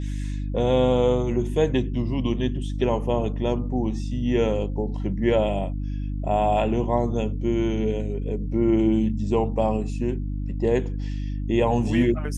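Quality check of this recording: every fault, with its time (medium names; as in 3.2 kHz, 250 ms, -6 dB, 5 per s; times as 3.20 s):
hum 50 Hz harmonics 6 -28 dBFS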